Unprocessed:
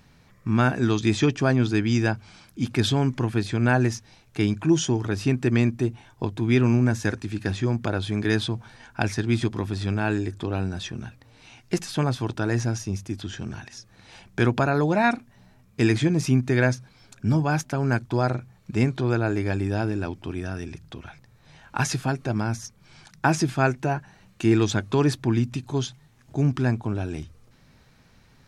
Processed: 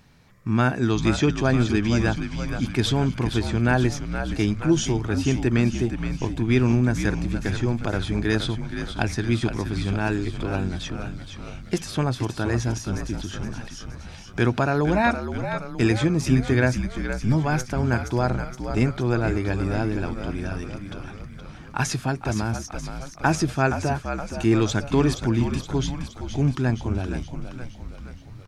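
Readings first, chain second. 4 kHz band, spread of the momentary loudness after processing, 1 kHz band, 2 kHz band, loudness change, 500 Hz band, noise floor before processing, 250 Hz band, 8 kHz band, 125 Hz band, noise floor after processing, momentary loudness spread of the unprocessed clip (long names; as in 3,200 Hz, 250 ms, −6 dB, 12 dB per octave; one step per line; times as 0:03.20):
+1.0 dB, 14 LU, +1.0 dB, +0.5 dB, +0.5 dB, +0.5 dB, −57 dBFS, +0.5 dB, +1.0 dB, +0.5 dB, −41 dBFS, 13 LU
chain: echo with shifted repeats 470 ms, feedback 58%, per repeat −65 Hz, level −8 dB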